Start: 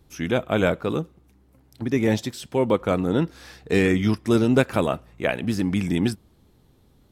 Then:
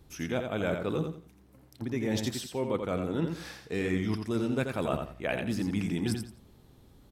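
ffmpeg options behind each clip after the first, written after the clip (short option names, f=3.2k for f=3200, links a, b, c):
-af "areverse,acompressor=threshold=-28dB:ratio=6,areverse,aecho=1:1:86|172|258:0.501|0.13|0.0339"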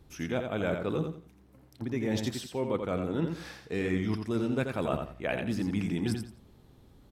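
-af "highshelf=f=5k:g=-5"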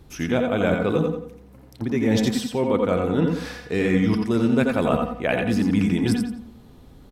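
-filter_complex "[0:a]asplit=2[a][b];[b]adelay=90,lowpass=f=1.6k:p=1,volume=-4dB,asplit=2[c][d];[d]adelay=90,lowpass=f=1.6k:p=1,volume=0.38,asplit=2[e][f];[f]adelay=90,lowpass=f=1.6k:p=1,volume=0.38,asplit=2[g][h];[h]adelay=90,lowpass=f=1.6k:p=1,volume=0.38,asplit=2[i][j];[j]adelay=90,lowpass=f=1.6k:p=1,volume=0.38[k];[a][c][e][g][i][k]amix=inputs=6:normalize=0,volume=8.5dB"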